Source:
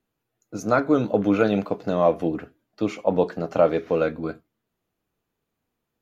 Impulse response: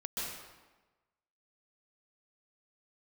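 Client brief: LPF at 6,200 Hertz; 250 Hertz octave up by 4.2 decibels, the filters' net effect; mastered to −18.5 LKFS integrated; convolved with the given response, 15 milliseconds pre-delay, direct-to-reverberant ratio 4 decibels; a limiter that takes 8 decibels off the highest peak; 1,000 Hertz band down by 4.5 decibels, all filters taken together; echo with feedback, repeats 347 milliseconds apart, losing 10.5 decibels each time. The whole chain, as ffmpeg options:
-filter_complex "[0:a]lowpass=6200,equalizer=frequency=250:width_type=o:gain=6,equalizer=frequency=1000:width_type=o:gain=-7.5,alimiter=limit=-14dB:level=0:latency=1,aecho=1:1:347|694|1041:0.299|0.0896|0.0269,asplit=2[link_01][link_02];[1:a]atrim=start_sample=2205,adelay=15[link_03];[link_02][link_03]afir=irnorm=-1:irlink=0,volume=-7dB[link_04];[link_01][link_04]amix=inputs=2:normalize=0,volume=5dB"

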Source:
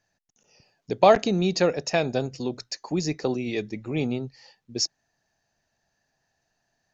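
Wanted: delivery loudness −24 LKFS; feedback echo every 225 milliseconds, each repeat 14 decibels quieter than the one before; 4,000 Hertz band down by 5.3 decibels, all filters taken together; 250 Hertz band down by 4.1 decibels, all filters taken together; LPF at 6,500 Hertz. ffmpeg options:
ffmpeg -i in.wav -af "lowpass=6500,equalizer=frequency=250:width_type=o:gain=-6,equalizer=frequency=4000:width_type=o:gain=-6,aecho=1:1:225|450:0.2|0.0399,volume=3dB" out.wav

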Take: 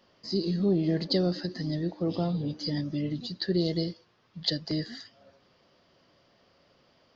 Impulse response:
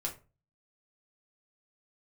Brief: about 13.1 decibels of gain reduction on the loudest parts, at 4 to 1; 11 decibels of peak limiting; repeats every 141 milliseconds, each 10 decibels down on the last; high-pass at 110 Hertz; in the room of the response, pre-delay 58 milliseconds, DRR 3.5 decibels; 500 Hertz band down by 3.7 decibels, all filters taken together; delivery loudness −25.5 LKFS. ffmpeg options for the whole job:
-filter_complex "[0:a]highpass=110,equalizer=frequency=500:width_type=o:gain=-5.5,acompressor=threshold=-39dB:ratio=4,alimiter=level_in=10dB:limit=-24dB:level=0:latency=1,volume=-10dB,aecho=1:1:141|282|423|564:0.316|0.101|0.0324|0.0104,asplit=2[link_01][link_02];[1:a]atrim=start_sample=2205,adelay=58[link_03];[link_02][link_03]afir=irnorm=-1:irlink=0,volume=-5dB[link_04];[link_01][link_04]amix=inputs=2:normalize=0,volume=15.5dB"

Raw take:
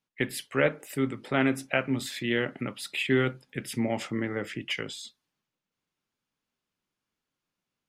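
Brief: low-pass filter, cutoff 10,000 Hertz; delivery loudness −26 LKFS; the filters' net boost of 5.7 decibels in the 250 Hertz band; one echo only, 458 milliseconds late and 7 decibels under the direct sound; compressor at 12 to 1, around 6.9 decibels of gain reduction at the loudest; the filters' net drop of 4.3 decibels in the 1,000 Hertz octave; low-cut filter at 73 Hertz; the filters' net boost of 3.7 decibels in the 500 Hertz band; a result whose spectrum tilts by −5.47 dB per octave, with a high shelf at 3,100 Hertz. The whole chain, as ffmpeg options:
ffmpeg -i in.wav -af "highpass=73,lowpass=10000,equalizer=frequency=250:width_type=o:gain=5.5,equalizer=frequency=500:width_type=o:gain=5,equalizer=frequency=1000:width_type=o:gain=-8,highshelf=frequency=3100:gain=-9,acompressor=threshold=-22dB:ratio=12,aecho=1:1:458:0.447,volume=4dB" out.wav

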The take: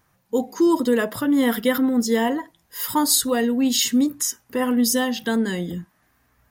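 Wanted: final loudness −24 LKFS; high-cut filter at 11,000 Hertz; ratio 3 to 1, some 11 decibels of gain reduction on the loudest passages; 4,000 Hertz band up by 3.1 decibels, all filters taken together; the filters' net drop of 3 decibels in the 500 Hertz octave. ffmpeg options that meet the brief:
ffmpeg -i in.wav -af "lowpass=11000,equalizer=frequency=500:width_type=o:gain=-3.5,equalizer=frequency=4000:width_type=o:gain=4,acompressor=threshold=-31dB:ratio=3,volume=7.5dB" out.wav

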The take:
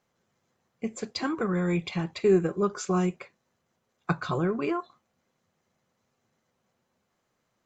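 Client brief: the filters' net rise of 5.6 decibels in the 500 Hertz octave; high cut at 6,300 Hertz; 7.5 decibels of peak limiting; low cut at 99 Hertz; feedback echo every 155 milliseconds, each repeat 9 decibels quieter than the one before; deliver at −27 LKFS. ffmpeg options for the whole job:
ffmpeg -i in.wav -af "highpass=99,lowpass=6300,equalizer=frequency=500:width_type=o:gain=8,alimiter=limit=-15.5dB:level=0:latency=1,aecho=1:1:155|310|465|620:0.355|0.124|0.0435|0.0152" out.wav

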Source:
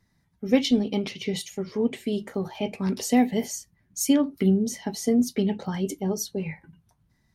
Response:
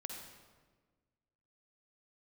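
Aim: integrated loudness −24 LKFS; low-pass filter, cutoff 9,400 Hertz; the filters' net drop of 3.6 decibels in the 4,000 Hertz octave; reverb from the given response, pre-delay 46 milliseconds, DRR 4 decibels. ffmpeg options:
-filter_complex "[0:a]lowpass=9400,equalizer=frequency=4000:width_type=o:gain=-5,asplit=2[link_01][link_02];[1:a]atrim=start_sample=2205,adelay=46[link_03];[link_02][link_03]afir=irnorm=-1:irlink=0,volume=-2dB[link_04];[link_01][link_04]amix=inputs=2:normalize=0,volume=0.5dB"

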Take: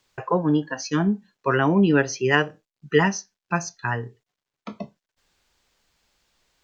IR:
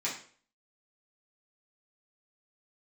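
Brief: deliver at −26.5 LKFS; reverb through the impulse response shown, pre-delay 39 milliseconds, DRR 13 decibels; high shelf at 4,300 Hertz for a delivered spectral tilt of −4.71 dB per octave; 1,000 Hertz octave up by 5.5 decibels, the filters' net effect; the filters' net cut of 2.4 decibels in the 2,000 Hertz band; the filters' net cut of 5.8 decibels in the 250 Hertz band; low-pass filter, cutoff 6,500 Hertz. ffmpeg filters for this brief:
-filter_complex "[0:a]lowpass=6500,equalizer=frequency=250:width_type=o:gain=-9,equalizer=frequency=1000:width_type=o:gain=8.5,equalizer=frequency=2000:width_type=o:gain=-5.5,highshelf=frequency=4300:gain=-5.5,asplit=2[link_01][link_02];[1:a]atrim=start_sample=2205,adelay=39[link_03];[link_02][link_03]afir=irnorm=-1:irlink=0,volume=-18.5dB[link_04];[link_01][link_04]amix=inputs=2:normalize=0,volume=-3dB"

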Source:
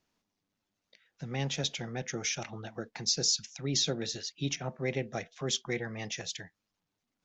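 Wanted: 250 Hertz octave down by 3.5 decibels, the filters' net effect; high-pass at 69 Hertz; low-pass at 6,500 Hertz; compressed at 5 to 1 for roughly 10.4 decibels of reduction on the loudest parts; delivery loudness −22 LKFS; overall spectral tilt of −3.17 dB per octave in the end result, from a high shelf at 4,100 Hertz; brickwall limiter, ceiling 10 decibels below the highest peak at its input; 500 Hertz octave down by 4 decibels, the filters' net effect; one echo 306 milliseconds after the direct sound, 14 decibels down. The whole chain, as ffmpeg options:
ffmpeg -i in.wav -af "highpass=69,lowpass=6500,equalizer=frequency=250:width_type=o:gain=-3.5,equalizer=frequency=500:width_type=o:gain=-4,highshelf=frequency=4100:gain=8.5,acompressor=threshold=-33dB:ratio=5,alimiter=level_in=6.5dB:limit=-24dB:level=0:latency=1,volume=-6.5dB,aecho=1:1:306:0.2,volume=19dB" out.wav

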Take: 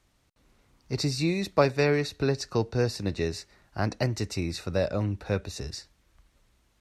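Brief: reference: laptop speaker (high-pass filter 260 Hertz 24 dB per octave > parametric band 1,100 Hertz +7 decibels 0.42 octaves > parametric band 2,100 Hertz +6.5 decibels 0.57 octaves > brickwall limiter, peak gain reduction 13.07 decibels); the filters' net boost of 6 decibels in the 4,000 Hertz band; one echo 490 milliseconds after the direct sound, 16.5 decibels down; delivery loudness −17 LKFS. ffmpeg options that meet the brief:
ffmpeg -i in.wav -af "highpass=frequency=260:width=0.5412,highpass=frequency=260:width=1.3066,equalizer=frequency=1100:width_type=o:width=0.42:gain=7,equalizer=frequency=2100:width_type=o:width=0.57:gain=6.5,equalizer=frequency=4000:width_type=o:gain=6.5,aecho=1:1:490:0.15,volume=13.5dB,alimiter=limit=-5dB:level=0:latency=1" out.wav

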